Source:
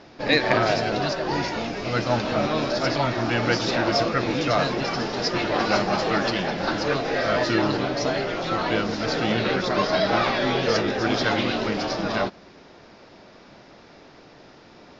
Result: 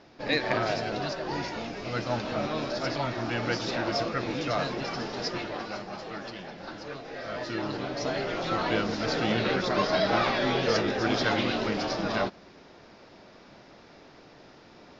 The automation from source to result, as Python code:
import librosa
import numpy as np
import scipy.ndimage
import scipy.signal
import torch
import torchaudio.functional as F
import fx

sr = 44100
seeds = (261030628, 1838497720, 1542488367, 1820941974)

y = fx.gain(x, sr, db=fx.line((5.28, -7.0), (5.75, -15.5), (7.07, -15.5), (8.36, -3.5)))